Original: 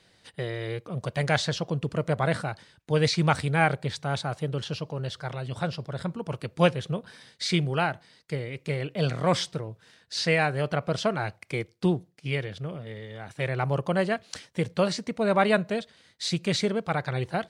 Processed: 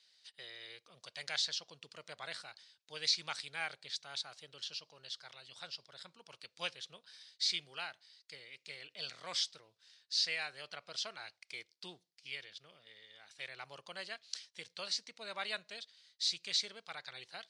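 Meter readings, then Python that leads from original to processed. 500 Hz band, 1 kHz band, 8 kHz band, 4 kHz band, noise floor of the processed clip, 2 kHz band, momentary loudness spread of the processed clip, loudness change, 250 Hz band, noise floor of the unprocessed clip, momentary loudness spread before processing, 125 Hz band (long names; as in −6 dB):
−25.5 dB, −20.0 dB, −5.0 dB, −3.0 dB, −80 dBFS, −13.0 dB, 19 LU, −11.5 dB, −33.0 dB, −62 dBFS, 11 LU, −36.5 dB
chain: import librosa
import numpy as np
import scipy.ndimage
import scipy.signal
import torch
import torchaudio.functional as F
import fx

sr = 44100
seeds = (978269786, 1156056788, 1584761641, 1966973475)

y = fx.bandpass_q(x, sr, hz=4700.0, q=1.8)
y = F.gain(torch.from_numpy(y), -1.0).numpy()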